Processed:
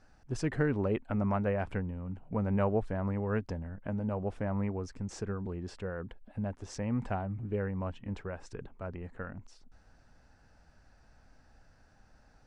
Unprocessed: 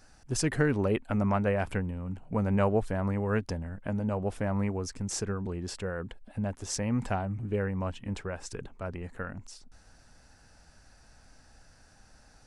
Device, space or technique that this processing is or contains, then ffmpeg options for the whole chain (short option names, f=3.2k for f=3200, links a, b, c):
through cloth: -af "lowpass=8.1k,highshelf=f=3.5k:g=-12,volume=-3dB"